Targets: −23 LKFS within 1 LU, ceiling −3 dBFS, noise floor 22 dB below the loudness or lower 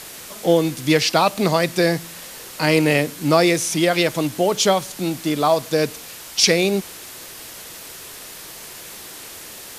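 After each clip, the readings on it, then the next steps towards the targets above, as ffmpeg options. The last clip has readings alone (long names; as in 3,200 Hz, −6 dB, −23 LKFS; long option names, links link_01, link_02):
background noise floor −38 dBFS; target noise floor −41 dBFS; integrated loudness −19.0 LKFS; sample peak −1.5 dBFS; target loudness −23.0 LKFS
→ -af "afftdn=noise_reduction=6:noise_floor=-38"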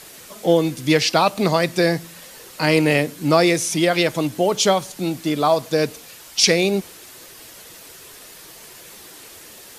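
background noise floor −42 dBFS; integrated loudness −19.0 LKFS; sample peak −1.5 dBFS; target loudness −23.0 LKFS
→ -af "volume=-4dB"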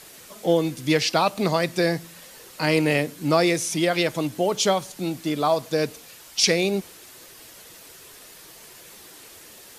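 integrated loudness −23.0 LKFS; sample peak −5.5 dBFS; background noise floor −46 dBFS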